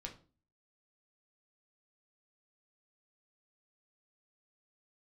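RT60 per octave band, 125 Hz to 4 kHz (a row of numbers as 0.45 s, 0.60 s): 0.55 s, 0.55 s, 0.40 s, 0.35 s, 0.30 s, 0.30 s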